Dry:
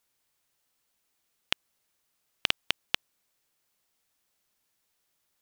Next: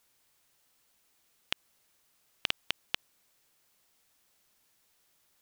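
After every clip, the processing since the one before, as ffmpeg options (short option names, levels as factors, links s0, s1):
-af "alimiter=level_in=4.47:limit=0.891:release=50:level=0:latency=1,volume=0.447"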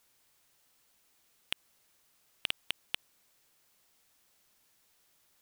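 -af "asoftclip=type=hard:threshold=0.168,volume=1.12"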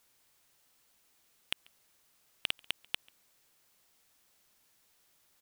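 -filter_complex "[0:a]asplit=2[s0][s1];[s1]adelay=139.9,volume=0.0447,highshelf=f=4000:g=-3.15[s2];[s0][s2]amix=inputs=2:normalize=0"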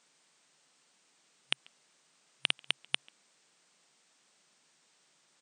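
-af "afftfilt=real='re*between(b*sr/4096,130,9100)':imag='im*between(b*sr/4096,130,9100)':win_size=4096:overlap=0.75,volume=1.58"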